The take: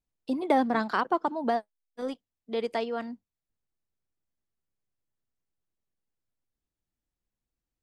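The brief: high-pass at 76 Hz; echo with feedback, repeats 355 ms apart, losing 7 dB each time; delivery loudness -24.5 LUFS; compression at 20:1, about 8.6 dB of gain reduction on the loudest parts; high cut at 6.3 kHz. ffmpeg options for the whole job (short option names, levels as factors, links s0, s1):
-af "highpass=76,lowpass=6300,acompressor=threshold=0.0501:ratio=20,aecho=1:1:355|710|1065|1420|1775:0.447|0.201|0.0905|0.0407|0.0183,volume=2.99"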